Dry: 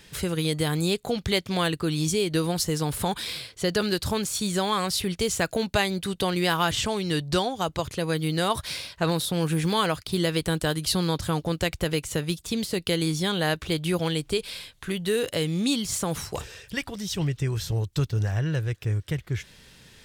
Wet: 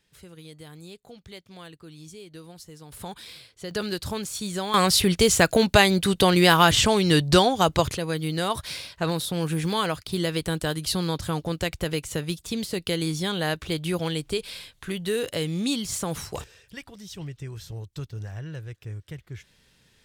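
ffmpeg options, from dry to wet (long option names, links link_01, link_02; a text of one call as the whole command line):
ffmpeg -i in.wav -af "asetnsamples=nb_out_samples=441:pad=0,asendcmd='2.92 volume volume -10.5dB;3.71 volume volume -4dB;4.74 volume volume 7dB;7.97 volume volume -1.5dB;16.44 volume volume -10dB',volume=-19dB" out.wav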